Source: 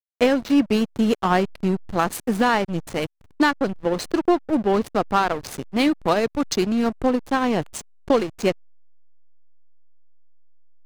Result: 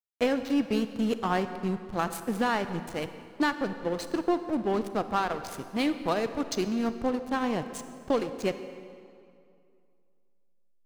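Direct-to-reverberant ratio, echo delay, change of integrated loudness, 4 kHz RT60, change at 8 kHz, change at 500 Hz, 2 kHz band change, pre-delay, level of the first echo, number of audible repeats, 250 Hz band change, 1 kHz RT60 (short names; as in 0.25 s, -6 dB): 10.0 dB, none, -8.0 dB, 1.8 s, -7.5 dB, -7.5 dB, -7.5 dB, 30 ms, none, none, -7.5 dB, 2.4 s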